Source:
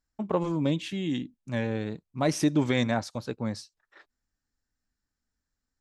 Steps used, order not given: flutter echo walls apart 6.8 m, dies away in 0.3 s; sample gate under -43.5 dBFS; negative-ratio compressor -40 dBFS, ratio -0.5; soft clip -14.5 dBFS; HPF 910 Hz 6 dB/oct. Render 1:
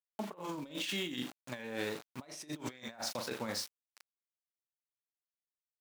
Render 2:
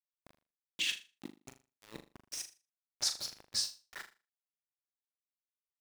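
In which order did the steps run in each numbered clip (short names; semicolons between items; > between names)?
flutter echo > sample gate > HPF > soft clip > negative-ratio compressor; soft clip > negative-ratio compressor > HPF > sample gate > flutter echo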